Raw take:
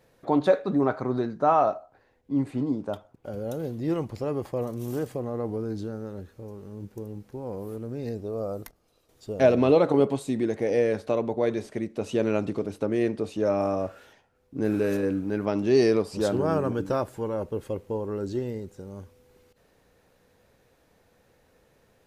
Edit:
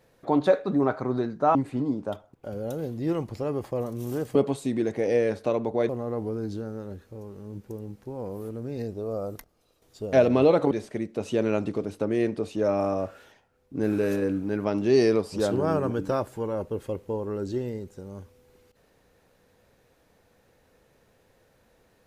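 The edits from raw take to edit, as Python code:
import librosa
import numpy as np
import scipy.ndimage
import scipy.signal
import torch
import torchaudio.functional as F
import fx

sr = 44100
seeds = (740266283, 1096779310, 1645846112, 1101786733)

y = fx.edit(x, sr, fx.cut(start_s=1.55, length_s=0.81),
    fx.move(start_s=9.98, length_s=1.54, to_s=5.16), tone=tone)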